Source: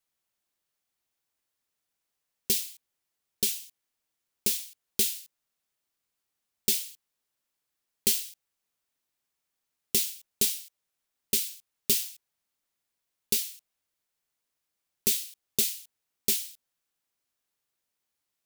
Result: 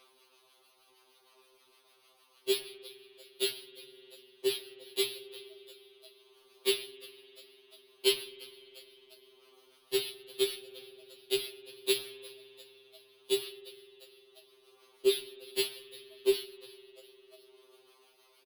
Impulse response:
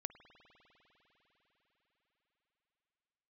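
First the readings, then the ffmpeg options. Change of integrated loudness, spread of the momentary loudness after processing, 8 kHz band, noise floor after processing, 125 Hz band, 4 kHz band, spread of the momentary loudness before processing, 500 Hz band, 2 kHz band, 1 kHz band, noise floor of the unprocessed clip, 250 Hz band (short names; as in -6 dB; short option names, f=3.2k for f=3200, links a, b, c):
-5.5 dB, 21 LU, -12.5 dB, -66 dBFS, under -10 dB, 0.0 dB, 12 LU, +12.0 dB, +1.5 dB, n/a, -84 dBFS, +2.0 dB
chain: -filter_complex "[0:a]highpass=f=350:w=0.5412,highpass=f=350:w=1.3066,equalizer=f=380:t=q:w=4:g=10,equalizer=f=590:t=q:w=4:g=-4,equalizer=f=1.1k:t=q:w=4:g=8,equalizer=f=1.8k:t=q:w=4:g=-8,equalizer=f=2.7k:t=q:w=4:g=3,equalizer=f=4k:t=q:w=4:g=4,lowpass=f=4k:w=0.5412,lowpass=f=4k:w=1.3066,acrusher=samples=6:mix=1:aa=0.000001,acrossover=split=860[a][b];[a]aeval=exprs='val(0)*(1-0.5/2+0.5/2*cos(2*PI*6.5*n/s))':c=same[c];[b]aeval=exprs='val(0)*(1-0.5/2-0.5/2*cos(2*PI*6.5*n/s))':c=same[d];[c][d]amix=inputs=2:normalize=0,asplit=4[e][f][g][h];[f]adelay=351,afreqshift=75,volume=-20dB[i];[g]adelay=702,afreqshift=150,volume=-29.6dB[j];[h]adelay=1053,afreqshift=225,volume=-39.3dB[k];[e][i][j][k]amix=inputs=4:normalize=0,acompressor=mode=upward:threshold=-48dB:ratio=2.5,asplit=2[l][m];[1:a]atrim=start_sample=2205[n];[m][n]afir=irnorm=-1:irlink=0,volume=6.5dB[o];[l][o]amix=inputs=2:normalize=0,aphaser=in_gain=1:out_gain=1:delay=1.5:decay=0.21:speed=0.74:type=sinusoidal,equalizer=f=1.6k:w=0.68:g=-5.5,afftfilt=real='re*2.45*eq(mod(b,6),0)':imag='im*2.45*eq(mod(b,6),0)':win_size=2048:overlap=0.75"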